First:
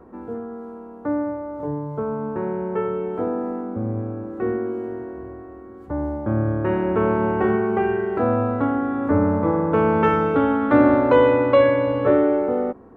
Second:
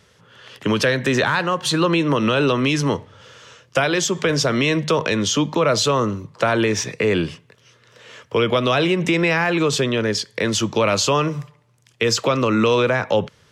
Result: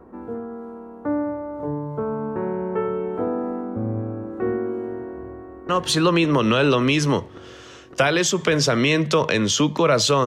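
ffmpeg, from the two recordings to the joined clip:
-filter_complex "[0:a]apad=whole_dur=10.26,atrim=end=10.26,atrim=end=5.692[a];[1:a]atrim=start=1.458:end=6.03[b];[a][b]acrossfade=d=0.004:c1=hsin:c2=hsin,asplit=2[c][d];[d]afade=t=in:st=5.1:d=0.01,afade=t=out:st=5.69:d=0.01,aecho=0:1:560|1120|1680|2240|2800|3360|3920|4480|5040|5600|6160|6720:0.841395|0.631046|0.473285|0.354964|0.266223|0.199667|0.14975|0.112313|0.0842345|0.0631759|0.0473819|0.0355364[e];[c][e]amix=inputs=2:normalize=0"

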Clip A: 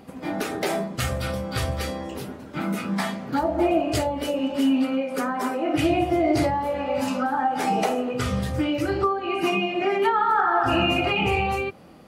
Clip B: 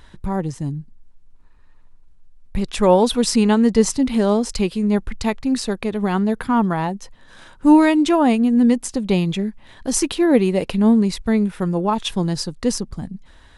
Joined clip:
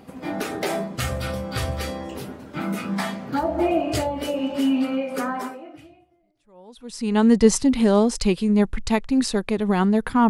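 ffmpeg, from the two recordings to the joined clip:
-filter_complex "[0:a]apad=whole_dur=10.29,atrim=end=10.29,atrim=end=7.24,asetpts=PTS-STARTPTS[a];[1:a]atrim=start=1.7:end=6.63,asetpts=PTS-STARTPTS[b];[a][b]acrossfade=d=1.88:c1=exp:c2=exp"

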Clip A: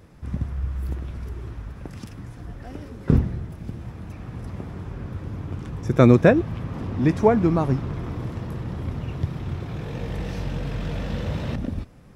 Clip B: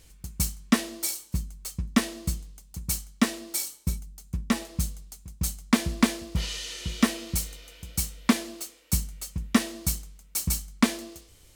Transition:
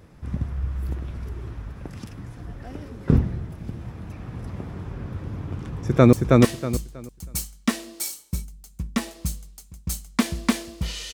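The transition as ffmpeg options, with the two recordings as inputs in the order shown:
-filter_complex "[0:a]apad=whole_dur=11.13,atrim=end=11.13,atrim=end=6.132[a];[1:a]atrim=start=1.668:end=6.67[b];[a][b]acrossfade=d=0.004:c1=hsin:c2=hsin,asplit=2[c][d];[d]afade=t=in:st=5.58:d=0.01,afade=t=out:st=6.13:d=0.01,aecho=0:1:320|640|960|1280:0.841395|0.210349|0.0525872|0.0131468[e];[c][e]amix=inputs=2:normalize=0"

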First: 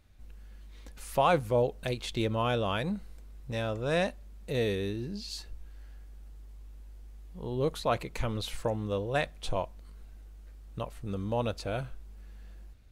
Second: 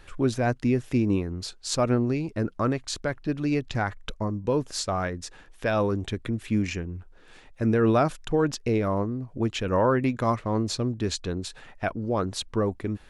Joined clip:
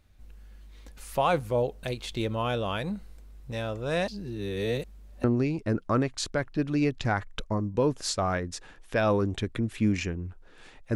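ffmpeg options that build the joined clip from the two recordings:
-filter_complex "[0:a]apad=whole_dur=10.95,atrim=end=10.95,asplit=2[a][b];[a]atrim=end=4.082[c];[b]atrim=start=4.078:end=5.242,asetpts=PTS-STARTPTS,areverse[d];[1:a]atrim=start=1.938:end=7.65[e];[c][d]acrossfade=d=0.004:c1=hsin:c2=hsin[f];[f][e]acrossfade=d=0.004:c1=hsin:c2=hsin"

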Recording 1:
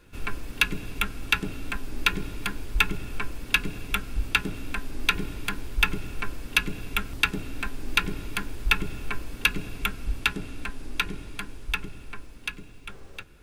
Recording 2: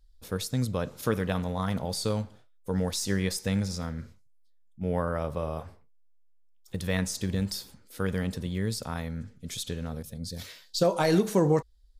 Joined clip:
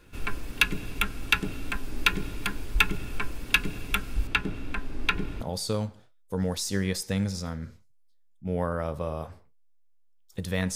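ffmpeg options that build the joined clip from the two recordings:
-filter_complex "[0:a]asettb=1/sr,asplit=3[a][b][c];[a]atrim=end=4.274[d];[b]atrim=start=4.27:end=5.41,asetpts=PTS-STARTPTS,afade=t=in:d=0.004:c=qsin,afade=t=out:st=1.136:d=0.004:c=qsin,lowpass=f=2.6k:p=1[e];[c]atrim=start=5.406[f];[d][e]acrossfade=d=0.004:c1=hsin:c2=qsin[g];[g][f]acrossfade=d=0.004:c1=qsin:c2=hsin,apad=whole_dur=10.75,atrim=end=10.75,atrim=end=5.412[h];[1:a]atrim=start=1.768:end=7.11[i];[h][i]acrossfade=d=0.004:c1=hsin:c2=hsin"

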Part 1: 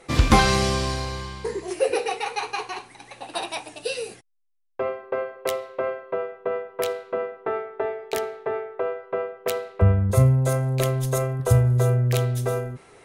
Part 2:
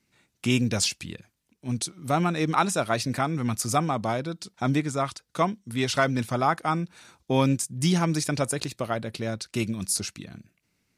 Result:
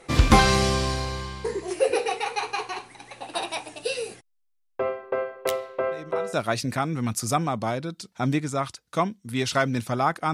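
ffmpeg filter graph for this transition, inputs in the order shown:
-filter_complex "[1:a]asplit=2[a][b];[0:a]apad=whole_dur=10.33,atrim=end=10.33,atrim=end=6.332[c];[b]atrim=start=2.748:end=6.75[d];[a]atrim=start=2.33:end=2.75,asetpts=PTS-STARTPTS,volume=-16dB,afade=t=in:d=0.004:c=hsin,afade=t=out:st=0.416:d=0.004:c=hsin,adelay=5910[e];[c][d]acrossfade=d=0.004:c1=hsin:c2=hsin[f];[f][e]amix=inputs=2:normalize=0"

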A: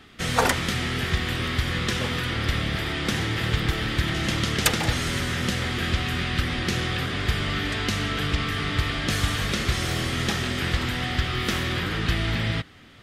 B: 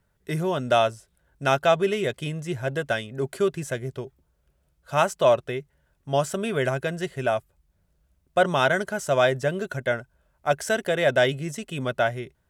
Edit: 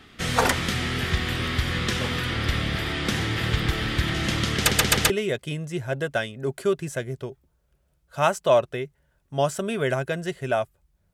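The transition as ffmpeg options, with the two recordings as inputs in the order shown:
-filter_complex "[0:a]apad=whole_dur=11.13,atrim=end=11.13,asplit=4[a][b][c][d];[a]atrim=end=4.712[e];[b]atrim=start=4.578:end=4.712[f];[c]atrim=start=4.578:end=4.712[g];[d]atrim=start=4.578:end=4.712[h];[1:a]atrim=start=1.848:end=7.88[i];[e][f]acrossfade=d=0.004:c1=hsin:c2=hsin[j];[j][g]acrossfade=d=0.004:c1=hsin:c2=hsin[k];[k][h]acrossfade=d=0.004:c1=hsin:c2=hsin[l];[l][i]acrossfade=d=0.004:c1=hsin:c2=hsin"

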